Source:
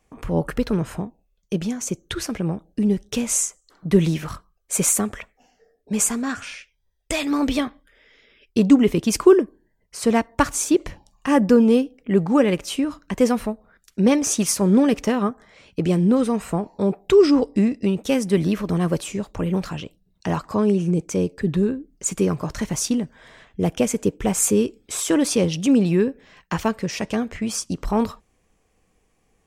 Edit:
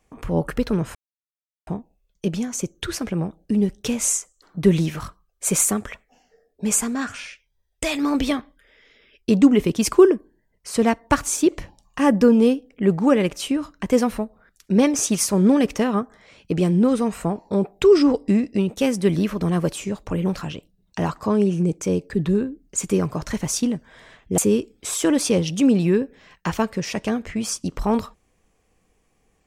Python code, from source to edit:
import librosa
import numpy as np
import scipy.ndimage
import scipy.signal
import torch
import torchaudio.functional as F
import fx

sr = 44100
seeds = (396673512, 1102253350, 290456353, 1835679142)

y = fx.edit(x, sr, fx.insert_silence(at_s=0.95, length_s=0.72),
    fx.cut(start_s=23.66, length_s=0.78), tone=tone)